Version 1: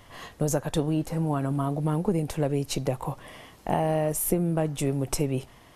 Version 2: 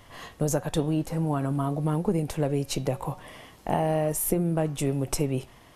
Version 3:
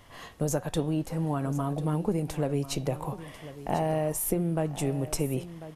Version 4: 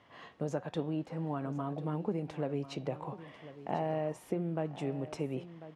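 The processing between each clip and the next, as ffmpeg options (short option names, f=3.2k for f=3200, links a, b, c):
-af "bandreject=f=184.2:t=h:w=4,bandreject=f=368.4:t=h:w=4,bandreject=f=552.6:t=h:w=4,bandreject=f=736.8:t=h:w=4,bandreject=f=921:t=h:w=4,bandreject=f=1.1052k:t=h:w=4,bandreject=f=1.2894k:t=h:w=4,bandreject=f=1.4736k:t=h:w=4,bandreject=f=1.6578k:t=h:w=4,bandreject=f=1.842k:t=h:w=4,bandreject=f=2.0262k:t=h:w=4,bandreject=f=2.2104k:t=h:w=4,bandreject=f=2.3946k:t=h:w=4,bandreject=f=2.5788k:t=h:w=4,bandreject=f=2.763k:t=h:w=4,bandreject=f=2.9472k:t=h:w=4,bandreject=f=3.1314k:t=h:w=4,bandreject=f=3.3156k:t=h:w=4,bandreject=f=3.4998k:t=h:w=4,bandreject=f=3.684k:t=h:w=4,bandreject=f=3.8682k:t=h:w=4"
-af "aecho=1:1:1044:0.188,volume=-2.5dB"
-af "highpass=150,lowpass=3.3k,volume=-5.5dB"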